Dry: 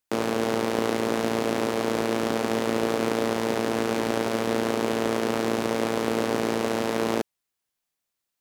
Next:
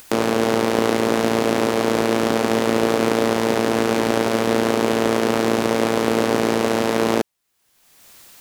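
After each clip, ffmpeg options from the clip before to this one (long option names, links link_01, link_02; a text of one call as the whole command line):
ffmpeg -i in.wav -af "acompressor=mode=upward:threshold=-28dB:ratio=2.5,volume=6.5dB" out.wav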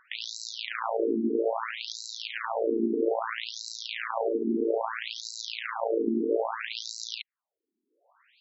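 ffmpeg -i in.wav -af "acrusher=bits=2:mode=log:mix=0:aa=0.000001,adynamicsmooth=sensitivity=6:basefreq=3300,afftfilt=real='re*between(b*sr/1024,290*pow(5500/290,0.5+0.5*sin(2*PI*0.61*pts/sr))/1.41,290*pow(5500/290,0.5+0.5*sin(2*PI*0.61*pts/sr))*1.41)':imag='im*between(b*sr/1024,290*pow(5500/290,0.5+0.5*sin(2*PI*0.61*pts/sr))/1.41,290*pow(5500/290,0.5+0.5*sin(2*PI*0.61*pts/sr))*1.41)':win_size=1024:overlap=0.75,volume=-4dB" out.wav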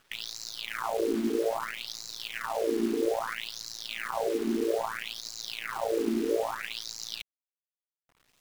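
ffmpeg -i in.wav -af "acrusher=bits=7:dc=4:mix=0:aa=0.000001,volume=-1.5dB" out.wav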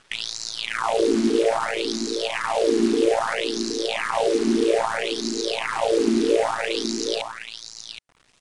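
ffmpeg -i in.wav -af "aecho=1:1:770:0.398,aresample=22050,aresample=44100,volume=8.5dB" out.wav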